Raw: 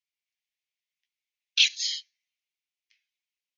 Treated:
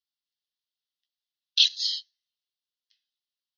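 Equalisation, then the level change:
parametric band 4,400 Hz +13 dB 2 octaves
phaser with its sweep stopped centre 2,300 Hz, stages 6
−9.0 dB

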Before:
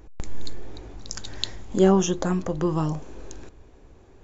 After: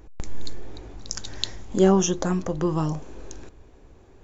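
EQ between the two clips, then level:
dynamic equaliser 5,800 Hz, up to +5 dB, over −54 dBFS, Q 3.5
0.0 dB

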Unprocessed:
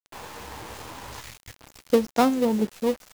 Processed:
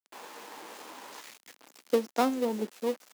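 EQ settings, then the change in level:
high-pass filter 240 Hz 24 dB per octave
−5.5 dB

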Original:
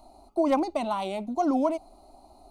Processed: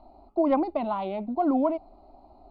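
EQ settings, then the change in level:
linear-phase brick-wall low-pass 5,200 Hz
high-frequency loss of the air 160 metres
high-shelf EQ 2,700 Hz −10.5 dB
+1.5 dB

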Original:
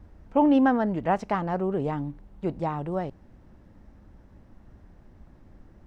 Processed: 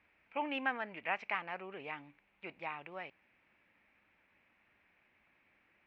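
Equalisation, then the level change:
resonant band-pass 2,400 Hz, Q 7
high-frequency loss of the air 120 metres
+12.5 dB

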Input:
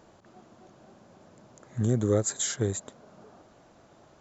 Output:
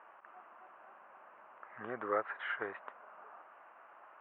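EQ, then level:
high-pass with resonance 1,100 Hz, resonance Q 1.9
Chebyshev low-pass filter 2,800 Hz, order 5
high-frequency loss of the air 440 metres
+5.0 dB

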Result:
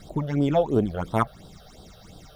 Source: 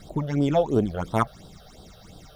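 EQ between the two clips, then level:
dynamic equaliser 6,100 Hz, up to −6 dB, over −53 dBFS, Q 1.4
0.0 dB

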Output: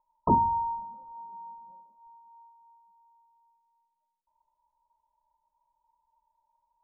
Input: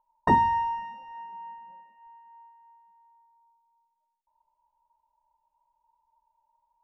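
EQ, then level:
Butterworth band-reject 790 Hz, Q 7.4
linear-phase brick-wall low-pass 1,300 Hz
high-frequency loss of the air 480 metres
0.0 dB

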